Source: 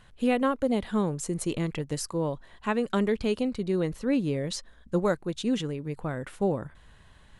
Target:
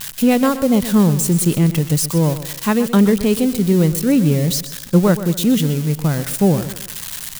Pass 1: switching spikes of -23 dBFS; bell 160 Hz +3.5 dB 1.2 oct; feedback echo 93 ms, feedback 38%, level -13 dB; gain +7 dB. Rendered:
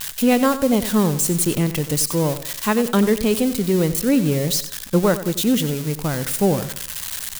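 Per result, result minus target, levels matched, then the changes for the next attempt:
echo 32 ms early; 125 Hz band -3.5 dB
change: feedback echo 0.125 s, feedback 38%, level -13 dB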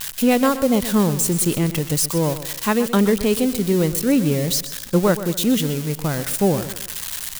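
125 Hz band -3.5 dB
change: bell 160 Hz +10.5 dB 1.2 oct

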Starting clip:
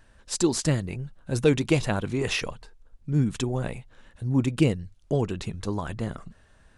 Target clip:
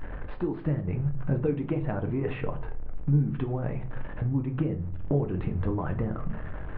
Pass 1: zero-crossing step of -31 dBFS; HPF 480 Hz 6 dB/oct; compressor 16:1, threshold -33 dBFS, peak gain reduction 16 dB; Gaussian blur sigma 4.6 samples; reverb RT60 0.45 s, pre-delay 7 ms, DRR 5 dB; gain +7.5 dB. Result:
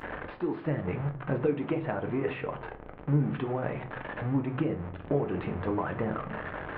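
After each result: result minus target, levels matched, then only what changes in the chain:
zero-crossing step: distortion +10 dB; 500 Hz band +3.5 dB
change: zero-crossing step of -41.5 dBFS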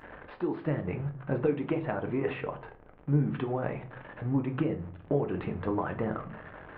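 500 Hz band +3.0 dB
remove: HPF 480 Hz 6 dB/oct

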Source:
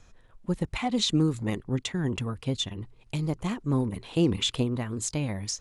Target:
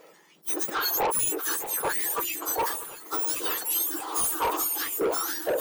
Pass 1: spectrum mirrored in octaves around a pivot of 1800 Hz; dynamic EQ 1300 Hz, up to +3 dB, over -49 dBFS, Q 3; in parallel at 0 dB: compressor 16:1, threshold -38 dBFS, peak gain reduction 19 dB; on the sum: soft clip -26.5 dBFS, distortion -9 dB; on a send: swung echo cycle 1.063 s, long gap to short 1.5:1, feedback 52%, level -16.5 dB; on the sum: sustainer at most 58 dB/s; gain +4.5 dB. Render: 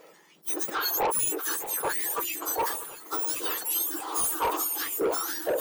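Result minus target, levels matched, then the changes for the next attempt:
compressor: peak gain reduction +8 dB
change: compressor 16:1, threshold -29.5 dBFS, peak gain reduction 11 dB

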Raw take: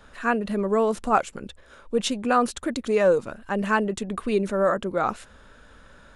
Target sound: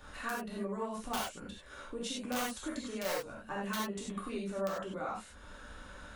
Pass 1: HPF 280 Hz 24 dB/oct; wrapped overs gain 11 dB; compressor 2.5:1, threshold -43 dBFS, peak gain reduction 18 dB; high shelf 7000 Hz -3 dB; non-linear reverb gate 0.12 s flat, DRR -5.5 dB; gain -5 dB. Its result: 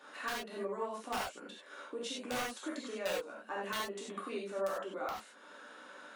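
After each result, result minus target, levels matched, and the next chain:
250 Hz band -5.0 dB; 8000 Hz band -2.5 dB
wrapped overs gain 11 dB; compressor 2.5:1, threshold -43 dBFS, peak gain reduction 17.5 dB; high shelf 7000 Hz -3 dB; non-linear reverb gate 0.12 s flat, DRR -5.5 dB; gain -5 dB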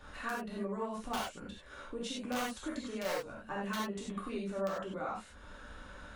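8000 Hz band -3.5 dB
wrapped overs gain 11 dB; compressor 2.5:1, threshold -43 dBFS, peak gain reduction 17.5 dB; high shelf 7000 Hz +5 dB; non-linear reverb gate 0.12 s flat, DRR -5.5 dB; gain -5 dB

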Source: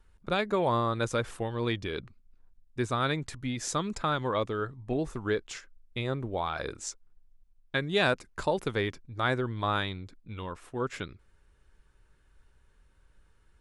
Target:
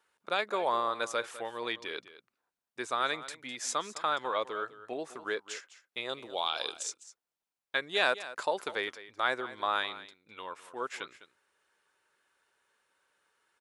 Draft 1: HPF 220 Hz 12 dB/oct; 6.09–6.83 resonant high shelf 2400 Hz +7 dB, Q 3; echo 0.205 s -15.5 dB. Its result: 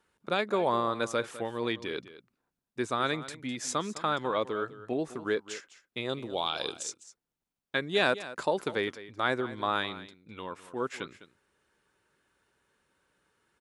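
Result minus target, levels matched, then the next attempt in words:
250 Hz band +8.5 dB
HPF 570 Hz 12 dB/oct; 6.09–6.83 resonant high shelf 2400 Hz +7 dB, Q 3; echo 0.205 s -15.5 dB

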